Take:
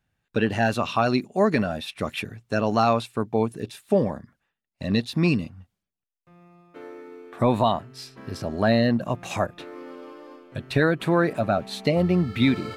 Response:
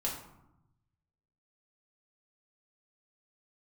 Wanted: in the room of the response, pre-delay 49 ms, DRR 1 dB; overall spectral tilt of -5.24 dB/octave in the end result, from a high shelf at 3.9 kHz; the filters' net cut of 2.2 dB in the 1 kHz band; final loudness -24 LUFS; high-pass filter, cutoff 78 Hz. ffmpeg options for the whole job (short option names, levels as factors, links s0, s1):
-filter_complex "[0:a]highpass=78,equalizer=f=1000:t=o:g=-3.5,highshelf=f=3900:g=5.5,asplit=2[s0][s1];[1:a]atrim=start_sample=2205,adelay=49[s2];[s1][s2]afir=irnorm=-1:irlink=0,volume=0.596[s3];[s0][s3]amix=inputs=2:normalize=0,volume=0.75"